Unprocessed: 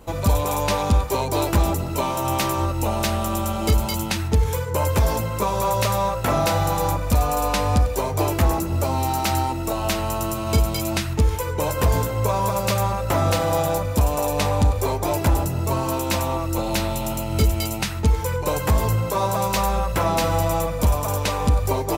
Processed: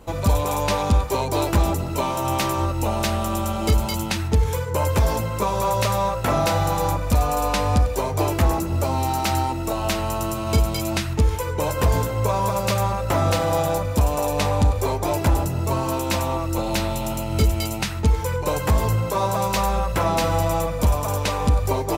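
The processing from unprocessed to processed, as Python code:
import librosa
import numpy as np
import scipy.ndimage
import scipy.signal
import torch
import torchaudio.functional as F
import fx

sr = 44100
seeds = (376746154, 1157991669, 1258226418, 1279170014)

y = fx.high_shelf(x, sr, hz=12000.0, db=-5.5)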